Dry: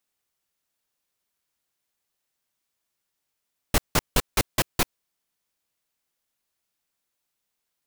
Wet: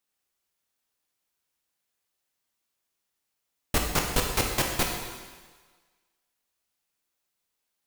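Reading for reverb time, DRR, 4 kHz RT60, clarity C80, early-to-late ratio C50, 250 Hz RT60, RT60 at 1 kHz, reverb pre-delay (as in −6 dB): 1.5 s, 0.5 dB, 1.5 s, 5.0 dB, 3.5 dB, 1.3 s, 1.5 s, 13 ms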